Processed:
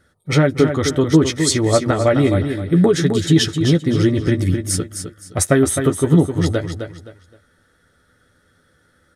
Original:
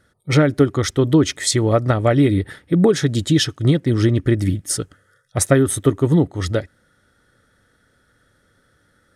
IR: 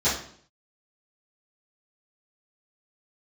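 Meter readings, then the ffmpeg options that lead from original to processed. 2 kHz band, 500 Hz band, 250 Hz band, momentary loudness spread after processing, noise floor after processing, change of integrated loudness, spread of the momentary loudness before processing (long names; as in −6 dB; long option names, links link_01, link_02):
+1.5 dB, +1.5 dB, +1.5 dB, 8 LU, −60 dBFS, +1.0 dB, 8 LU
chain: -filter_complex "[0:a]asplit=2[link_01][link_02];[link_02]adelay=12,volume=-7dB[link_03];[link_01][link_03]amix=inputs=2:normalize=0,asplit=2[link_04][link_05];[link_05]aecho=0:1:260|520|780:0.422|0.118|0.0331[link_06];[link_04][link_06]amix=inputs=2:normalize=0"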